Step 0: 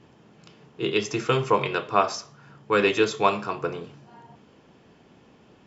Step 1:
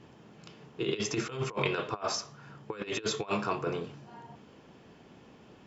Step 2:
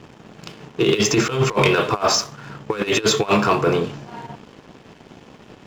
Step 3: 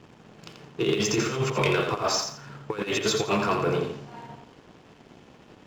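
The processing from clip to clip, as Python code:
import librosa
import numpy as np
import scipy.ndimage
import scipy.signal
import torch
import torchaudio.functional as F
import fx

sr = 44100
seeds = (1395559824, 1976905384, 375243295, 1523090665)

y1 = fx.over_compress(x, sr, threshold_db=-27.0, ratio=-0.5)
y1 = y1 * librosa.db_to_amplitude(-4.5)
y2 = fx.leveller(y1, sr, passes=2)
y2 = y2 * librosa.db_to_amplitude(8.0)
y3 = fx.echo_feedback(y2, sr, ms=85, feedback_pct=25, wet_db=-6.5)
y3 = y3 * librosa.db_to_amplitude(-8.0)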